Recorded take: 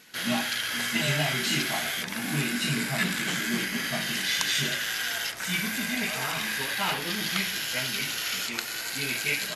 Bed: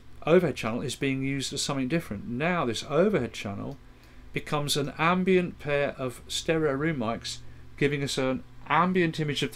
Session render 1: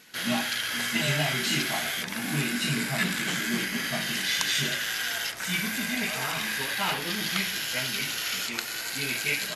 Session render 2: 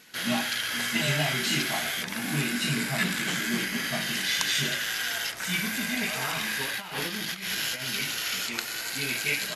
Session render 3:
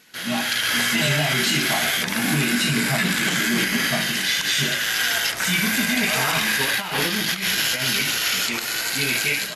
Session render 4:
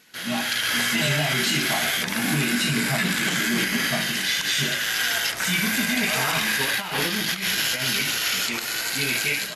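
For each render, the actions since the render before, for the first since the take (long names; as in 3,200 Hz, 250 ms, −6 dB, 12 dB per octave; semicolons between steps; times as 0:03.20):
no processing that can be heard
0:06.69–0:07.88: compressor whose output falls as the input rises −32 dBFS, ratio −0.5
automatic gain control gain up to 10.5 dB; brickwall limiter −11 dBFS, peak gain reduction 9 dB
level −2 dB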